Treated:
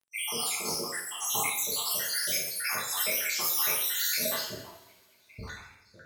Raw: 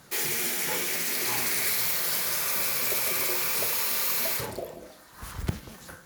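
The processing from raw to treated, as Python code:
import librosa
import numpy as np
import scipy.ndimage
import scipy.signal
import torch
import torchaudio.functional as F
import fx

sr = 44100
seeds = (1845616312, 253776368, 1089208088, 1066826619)

y = fx.spec_dropout(x, sr, seeds[0], share_pct=83)
y = fx.env_lowpass(y, sr, base_hz=1900.0, full_db=-31.0)
y = scipy.signal.sosfilt(scipy.signal.butter(2, 97.0, 'highpass', fs=sr, output='sos'), y)
y = fx.peak_eq(y, sr, hz=170.0, db=-5.0, octaves=2.7)
y = fx.rev_double_slope(y, sr, seeds[1], early_s=0.64, late_s=2.9, knee_db=-25, drr_db=-6.5)
y = fx.dmg_crackle(y, sr, seeds[2], per_s=18.0, level_db=-55.0)
y = fx.buffer_crackle(y, sr, first_s=0.47, period_s=0.25, block=512, kind='repeat')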